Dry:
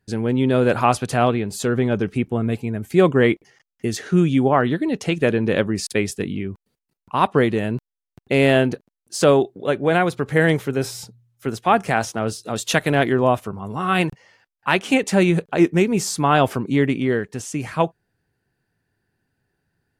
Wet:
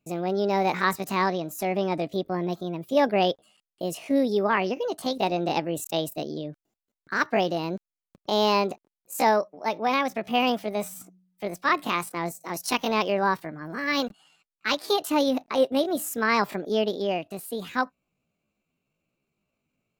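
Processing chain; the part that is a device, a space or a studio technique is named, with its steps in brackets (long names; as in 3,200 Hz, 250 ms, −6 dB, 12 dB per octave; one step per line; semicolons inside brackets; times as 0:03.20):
chipmunk voice (pitch shifter +7.5 semitones)
level −6.5 dB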